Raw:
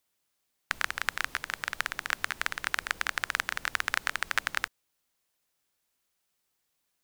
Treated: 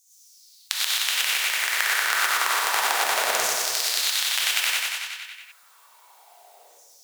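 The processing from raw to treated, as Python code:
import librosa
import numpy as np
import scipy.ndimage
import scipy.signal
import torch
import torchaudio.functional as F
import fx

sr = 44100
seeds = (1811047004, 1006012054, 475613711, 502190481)

p1 = fx.band_shelf(x, sr, hz=580.0, db=11.0, octaves=1.7)
p2 = fx.filter_lfo_highpass(p1, sr, shape='saw_down', hz=0.3, low_hz=570.0, high_hz=6500.0, q=4.7)
p3 = p2 + fx.echo_feedback(p2, sr, ms=93, feedback_pct=58, wet_db=-5, dry=0)
p4 = fx.rev_gated(p3, sr, seeds[0], gate_ms=140, shape='rising', drr_db=-7.0)
p5 = fx.spectral_comp(p4, sr, ratio=2.0)
y = p5 * 10.0 ** (-1.0 / 20.0)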